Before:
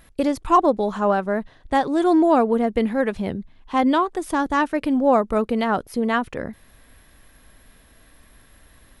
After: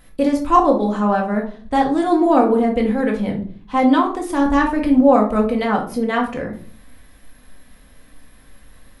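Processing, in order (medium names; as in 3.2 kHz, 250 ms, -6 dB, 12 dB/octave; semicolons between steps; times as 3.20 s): 4.40–4.99 s: bass shelf 130 Hz +11 dB; simulated room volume 360 m³, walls furnished, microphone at 2 m; trim -1 dB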